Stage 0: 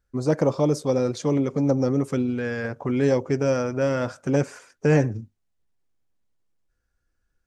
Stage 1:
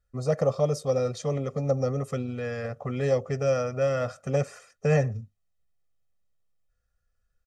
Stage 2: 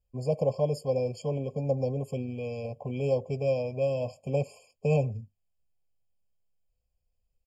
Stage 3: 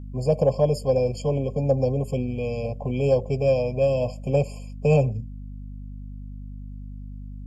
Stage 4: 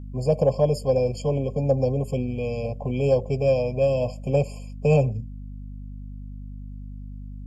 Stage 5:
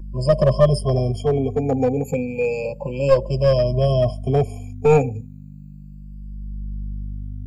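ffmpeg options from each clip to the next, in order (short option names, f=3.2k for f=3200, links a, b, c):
-af "aecho=1:1:1.6:0.86,volume=-5.5dB"
-af "afftfilt=real='re*eq(mod(floor(b*sr/1024/1100),2),0)':imag='im*eq(mod(floor(b*sr/1024/1100),2),0)':win_size=1024:overlap=0.75,volume=-2.5dB"
-af "aeval=exprs='val(0)+0.00794*(sin(2*PI*50*n/s)+sin(2*PI*2*50*n/s)/2+sin(2*PI*3*50*n/s)/3+sin(2*PI*4*50*n/s)/4+sin(2*PI*5*50*n/s)/5)':c=same,acontrast=73"
-af anull
-filter_complex "[0:a]afftfilt=real='re*pow(10,23/40*sin(2*PI*(1.3*log(max(b,1)*sr/1024/100)/log(2)-(0.32)*(pts-256)/sr)))':imag='im*pow(10,23/40*sin(2*PI*(1.3*log(max(b,1)*sr/1024/100)/log(2)-(0.32)*(pts-256)/sr)))':win_size=1024:overlap=0.75,acrossover=split=270|790|4100[a][b][c][d];[b]aeval=exprs='clip(val(0),-1,0.126)':c=same[e];[a][e][c][d]amix=inputs=4:normalize=0"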